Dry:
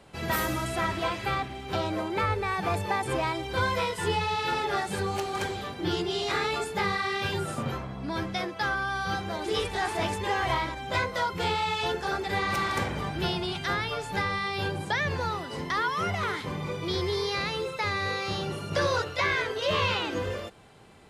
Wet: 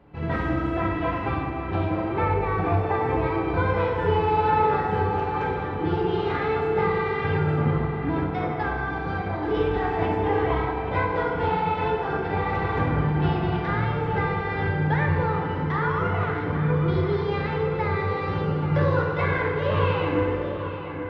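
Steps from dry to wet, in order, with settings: tone controls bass +3 dB, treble -11 dB; band-stop 630 Hz, Q 12; FDN reverb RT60 2.3 s, low-frequency decay 0.8×, high-frequency decay 0.65×, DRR -0.5 dB; in parallel at -6.5 dB: crossover distortion -37 dBFS; on the sum: tape spacing loss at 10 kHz 33 dB; filtered feedback delay 833 ms, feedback 61%, low-pass 3.4 kHz, level -9.5 dB

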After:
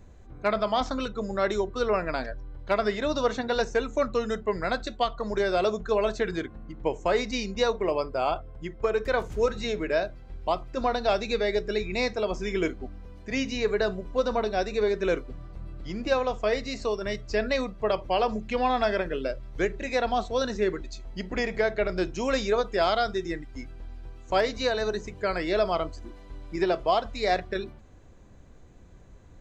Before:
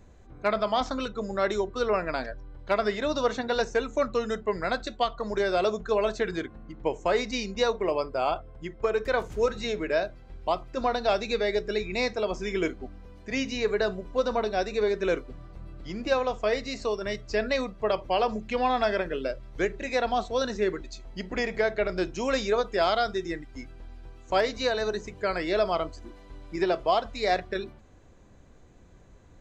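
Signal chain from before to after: bass shelf 160 Hz +4 dB

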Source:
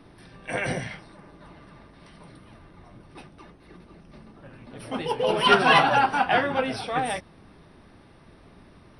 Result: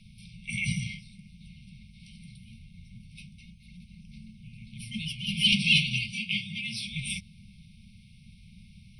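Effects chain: 6.12–6.85 s: high-pass 160 Hz 12 dB/octave; FFT band-reject 230–2100 Hz; trim +2.5 dB

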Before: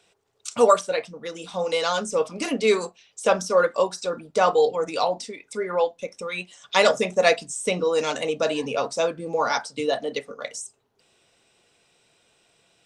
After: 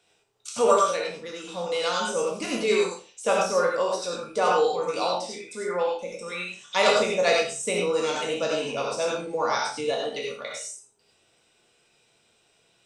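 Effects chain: spectral sustain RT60 0.36 s; gated-style reverb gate 120 ms rising, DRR -0.5 dB; trim -6 dB

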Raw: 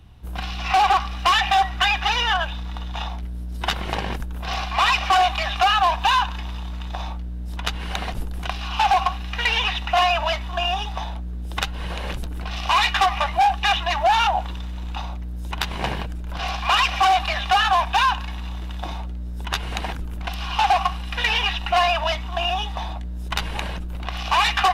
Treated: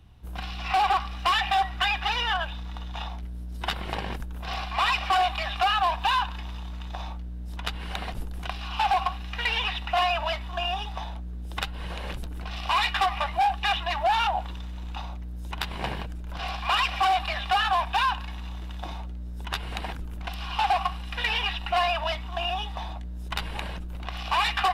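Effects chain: dynamic bell 6.3 kHz, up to -8 dB, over -53 dBFS, Q 5; trim -5.5 dB

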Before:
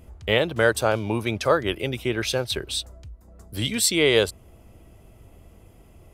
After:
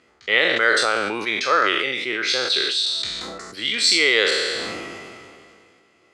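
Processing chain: spectral sustain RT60 0.63 s; cabinet simulation 420–7100 Hz, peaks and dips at 630 Hz -8 dB, 910 Hz -6 dB, 1.3 kHz +6 dB, 2 kHz +8 dB, 4.3 kHz +8 dB; decay stretcher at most 25 dB/s; trim -1 dB

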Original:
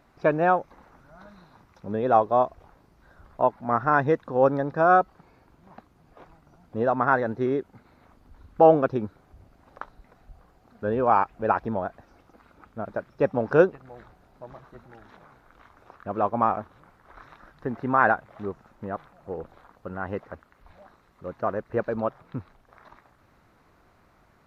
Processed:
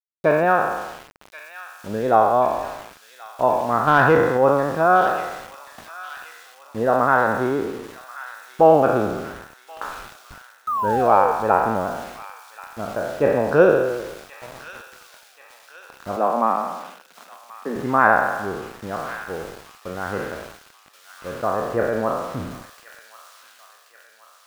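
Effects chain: spectral sustain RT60 1.20 s; 3.87–4.37 s: waveshaping leveller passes 1; 10.67–11.32 s: painted sound fall 450–1300 Hz -24 dBFS; small samples zeroed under -37.5 dBFS; 16.16–17.76 s: rippled Chebyshev high-pass 160 Hz, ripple 3 dB; feedback echo behind a high-pass 1080 ms, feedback 53%, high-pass 2.9 kHz, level -3 dB; trim +1.5 dB

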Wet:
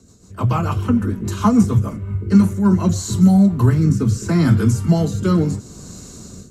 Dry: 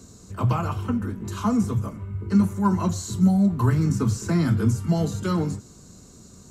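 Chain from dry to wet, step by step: rotary cabinet horn 6.7 Hz, later 0.75 Hz, at 1.73 s; level rider gain up to 15 dB; trim -1.5 dB

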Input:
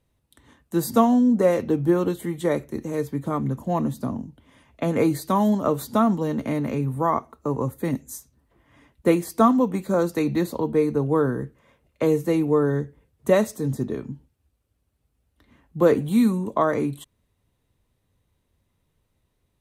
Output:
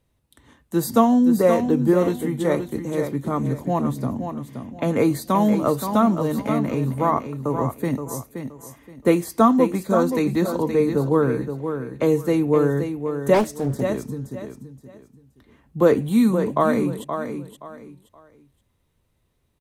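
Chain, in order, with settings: feedback delay 523 ms, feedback 26%, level -8 dB; 13.34–13.81 s: loudspeaker Doppler distortion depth 0.63 ms; trim +1.5 dB

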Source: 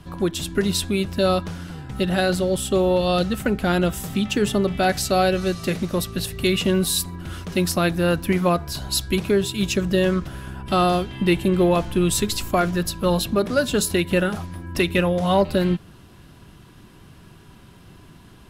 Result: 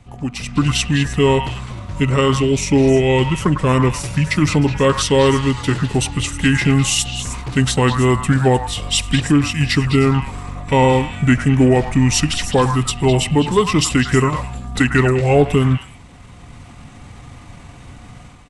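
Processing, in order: pitch shift -5.5 st; level rider gain up to 11 dB; repeats whose band climbs or falls 103 ms, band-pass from 1.2 kHz, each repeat 1.4 oct, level -3.5 dB; trim -2 dB

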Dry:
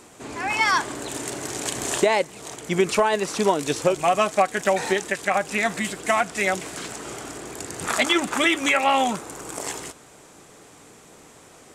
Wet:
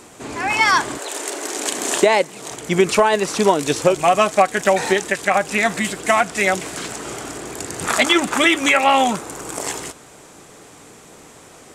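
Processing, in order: 0.97–2.49 s: high-pass 450 Hz -> 120 Hz 24 dB/octave; trim +5 dB

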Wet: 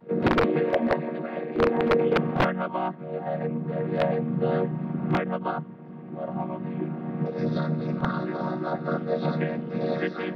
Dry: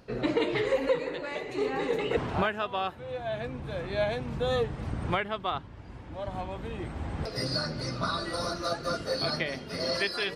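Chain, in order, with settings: vocoder on a held chord minor triad, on D#3; treble shelf 5.4 kHz -6 dB; integer overflow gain 19 dB; distance through air 330 m; pre-echo 41 ms -18.5 dB; trim +7 dB

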